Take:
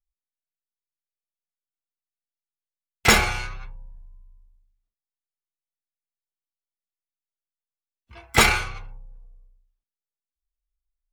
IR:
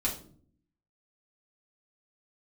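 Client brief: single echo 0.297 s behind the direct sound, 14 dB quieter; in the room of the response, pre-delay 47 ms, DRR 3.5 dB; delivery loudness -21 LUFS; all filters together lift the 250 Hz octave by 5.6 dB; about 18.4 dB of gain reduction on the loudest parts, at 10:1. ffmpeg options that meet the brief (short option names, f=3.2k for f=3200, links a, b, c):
-filter_complex "[0:a]equalizer=f=250:t=o:g=7,acompressor=threshold=-29dB:ratio=10,aecho=1:1:297:0.2,asplit=2[a][b];[1:a]atrim=start_sample=2205,adelay=47[c];[b][c]afir=irnorm=-1:irlink=0,volume=-9dB[d];[a][d]amix=inputs=2:normalize=0,volume=13.5dB"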